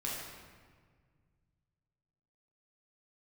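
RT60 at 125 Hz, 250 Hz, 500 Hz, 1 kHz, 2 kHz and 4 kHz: 3.1, 2.4, 1.8, 1.6, 1.5, 1.1 s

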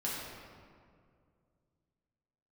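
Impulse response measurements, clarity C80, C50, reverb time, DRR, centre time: 0.5 dB, -1.5 dB, 2.2 s, -7.0 dB, 0.115 s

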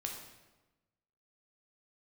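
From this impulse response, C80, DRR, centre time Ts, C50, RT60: 6.5 dB, 1.0 dB, 39 ms, 4.5 dB, 1.1 s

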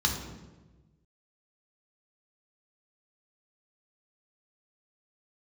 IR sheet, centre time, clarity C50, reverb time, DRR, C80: 33 ms, 5.5 dB, 1.2 s, 0.5 dB, 8.0 dB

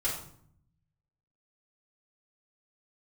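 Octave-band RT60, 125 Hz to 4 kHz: 1.4, 1.0, 0.65, 0.60, 0.45, 0.45 s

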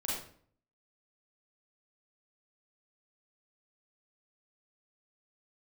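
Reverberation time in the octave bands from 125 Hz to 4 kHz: 0.75, 0.65, 0.55, 0.50, 0.45, 0.40 s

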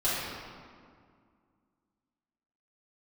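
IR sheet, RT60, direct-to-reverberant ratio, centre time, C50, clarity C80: 2.1 s, -11.5 dB, 0.128 s, -2.5 dB, -0.5 dB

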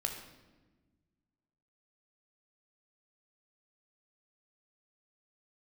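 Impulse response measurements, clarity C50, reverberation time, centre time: 6.5 dB, 1.3 s, 27 ms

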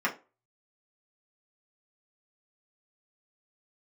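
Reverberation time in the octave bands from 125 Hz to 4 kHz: 0.25, 0.30, 0.35, 0.30, 0.25, 0.20 s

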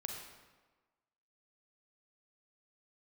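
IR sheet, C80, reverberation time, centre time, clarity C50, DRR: 4.5 dB, 1.3 s, 51 ms, 2.5 dB, 1.5 dB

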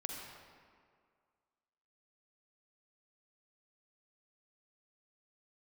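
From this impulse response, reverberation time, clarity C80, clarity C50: 2.0 s, 2.0 dB, 0.5 dB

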